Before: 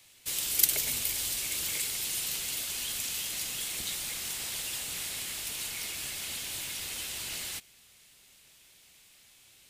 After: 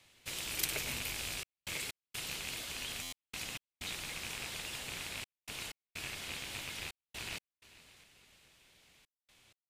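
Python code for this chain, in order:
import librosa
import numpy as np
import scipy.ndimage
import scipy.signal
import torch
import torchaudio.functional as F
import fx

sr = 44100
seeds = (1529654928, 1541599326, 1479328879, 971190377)

y = fx.rattle_buzz(x, sr, strikes_db=-51.0, level_db=-26.0)
y = fx.lowpass(y, sr, hz=2300.0, slope=6)
y = fx.echo_feedback(y, sr, ms=444, feedback_pct=44, wet_db=-19.5)
y = fx.step_gate(y, sr, bpm=63, pattern='xxxxxx.x.xxxx.x.', floor_db=-60.0, edge_ms=4.5)
y = fx.buffer_glitch(y, sr, at_s=(3.02,), block=512, repeats=8)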